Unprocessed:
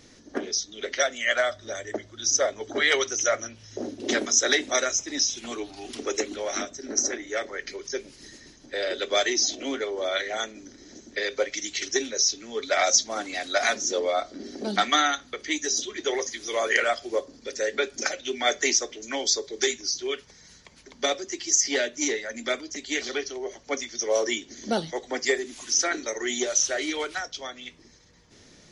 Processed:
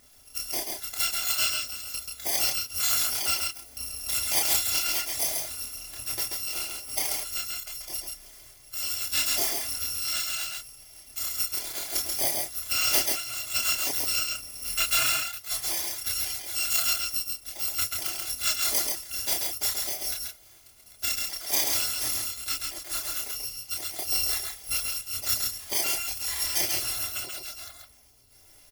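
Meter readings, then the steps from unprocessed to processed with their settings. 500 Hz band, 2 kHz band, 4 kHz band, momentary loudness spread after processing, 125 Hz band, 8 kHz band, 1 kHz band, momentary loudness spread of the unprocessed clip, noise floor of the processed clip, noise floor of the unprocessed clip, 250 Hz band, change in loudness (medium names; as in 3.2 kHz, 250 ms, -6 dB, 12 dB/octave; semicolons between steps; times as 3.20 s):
-17.0 dB, -6.5 dB, 0.0 dB, 10 LU, no reading, -2.0 dB, -8.0 dB, 13 LU, -54 dBFS, -53 dBFS, -14.5 dB, 0.0 dB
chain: bit-reversed sample order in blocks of 256 samples; chorus voices 6, 0.3 Hz, delay 29 ms, depth 4.9 ms; delay 135 ms -3.5 dB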